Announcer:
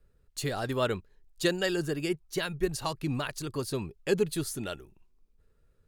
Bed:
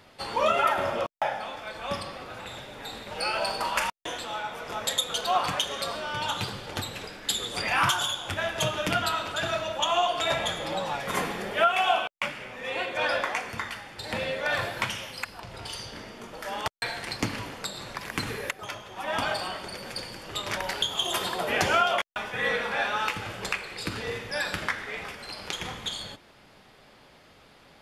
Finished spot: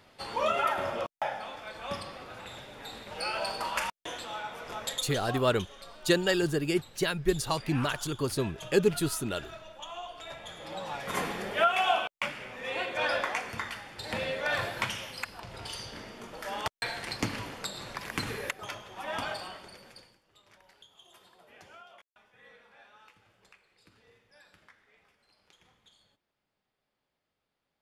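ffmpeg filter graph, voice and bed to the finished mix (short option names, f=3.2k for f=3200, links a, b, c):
-filter_complex "[0:a]adelay=4650,volume=2.5dB[a];[1:a]volume=10dB,afade=t=out:st=4.7:d=0.73:silence=0.237137,afade=t=in:st=10.43:d=0.86:silence=0.188365,afade=t=out:st=18.65:d=1.56:silence=0.0446684[b];[a][b]amix=inputs=2:normalize=0"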